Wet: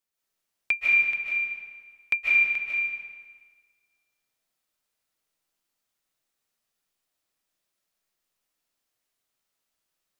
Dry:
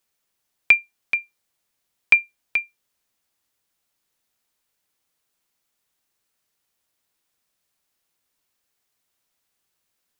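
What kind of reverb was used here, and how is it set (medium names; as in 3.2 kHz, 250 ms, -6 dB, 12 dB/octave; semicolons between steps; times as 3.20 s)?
algorithmic reverb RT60 1.5 s, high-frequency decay 0.9×, pre-delay 110 ms, DRR -6 dB; trim -11 dB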